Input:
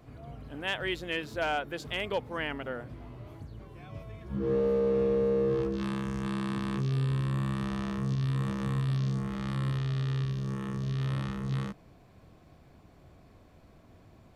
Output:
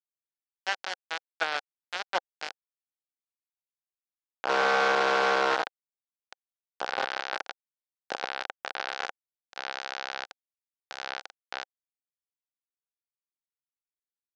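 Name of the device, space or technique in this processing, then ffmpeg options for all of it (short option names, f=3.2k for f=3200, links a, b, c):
hand-held game console: -af "acrusher=bits=3:mix=0:aa=0.000001,highpass=460,equalizer=f=530:t=q:w=4:g=4,equalizer=f=780:t=q:w=4:g=8,equalizer=f=1.5k:t=q:w=4:g=8,lowpass=f=5.3k:w=0.5412,lowpass=f=5.3k:w=1.3066"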